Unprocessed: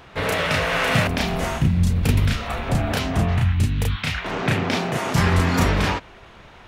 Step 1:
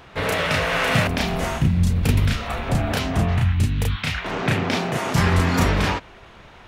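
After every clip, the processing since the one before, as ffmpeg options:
-af anull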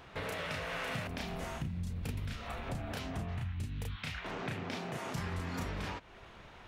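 -af "acompressor=threshold=0.0282:ratio=3,volume=0.398"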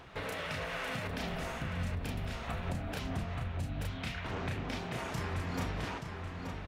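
-filter_complex "[0:a]aphaser=in_gain=1:out_gain=1:delay=4:decay=0.22:speed=1.6:type=sinusoidal,asplit=2[s0][s1];[s1]adelay=877,lowpass=f=4700:p=1,volume=0.562,asplit=2[s2][s3];[s3]adelay=877,lowpass=f=4700:p=1,volume=0.42,asplit=2[s4][s5];[s5]adelay=877,lowpass=f=4700:p=1,volume=0.42,asplit=2[s6][s7];[s7]adelay=877,lowpass=f=4700:p=1,volume=0.42,asplit=2[s8][s9];[s9]adelay=877,lowpass=f=4700:p=1,volume=0.42[s10];[s2][s4][s6][s8][s10]amix=inputs=5:normalize=0[s11];[s0][s11]amix=inputs=2:normalize=0"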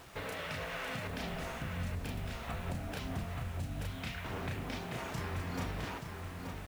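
-af "acrusher=bits=8:mix=0:aa=0.000001,volume=0.794"

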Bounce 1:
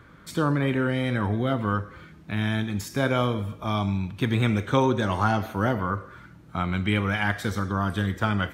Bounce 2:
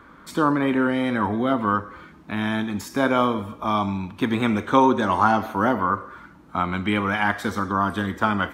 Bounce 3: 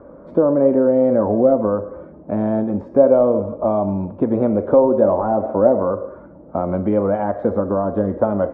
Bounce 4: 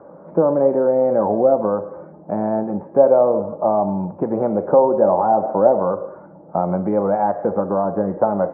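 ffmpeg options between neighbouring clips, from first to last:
-af "equalizer=f=125:t=o:w=1:g=-10,equalizer=f=250:t=o:w=1:g=7,equalizer=f=1000:t=o:w=1:g=9"
-af "apsyclip=3.55,acompressor=threshold=0.316:ratio=6,lowpass=f=570:t=q:w=7,volume=0.501"
-af "highpass=150,equalizer=f=170:t=q:w=4:g=8,equalizer=f=250:t=q:w=4:g=-8,equalizer=f=820:t=q:w=4:g=9,lowpass=f=2000:w=0.5412,lowpass=f=2000:w=1.3066,volume=0.891"

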